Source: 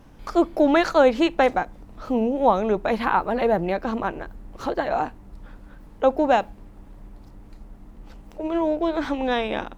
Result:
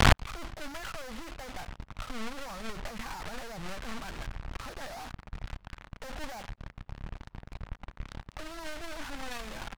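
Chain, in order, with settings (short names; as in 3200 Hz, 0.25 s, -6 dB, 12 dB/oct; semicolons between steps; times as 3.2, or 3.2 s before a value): fuzz box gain 43 dB, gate -45 dBFS; air absorption 180 m; flipped gate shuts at -17 dBFS, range -40 dB; sample leveller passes 5; bell 370 Hz -13 dB 1.9 oct; gain +13.5 dB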